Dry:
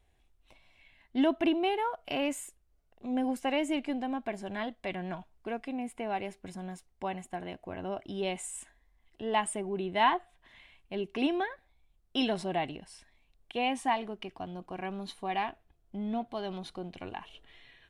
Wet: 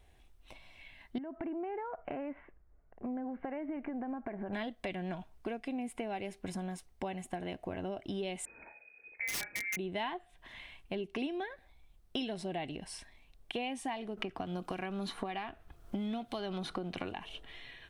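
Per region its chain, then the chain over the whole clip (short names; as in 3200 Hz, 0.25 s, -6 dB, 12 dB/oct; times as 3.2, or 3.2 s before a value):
1.18–4.53 steep low-pass 2000 Hz + compressor 5:1, threshold -39 dBFS
8.45–9.77 flutter echo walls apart 6.4 m, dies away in 0.21 s + inverted band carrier 2500 Hz + wrapped overs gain 25.5 dB
14.17–17.12 bell 1300 Hz +9 dB 0.56 oct + three-band squash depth 100%
whole clip: notch 7100 Hz, Q 20; dynamic EQ 1100 Hz, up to -7 dB, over -47 dBFS, Q 1.3; compressor 5:1, threshold -42 dBFS; gain +6.5 dB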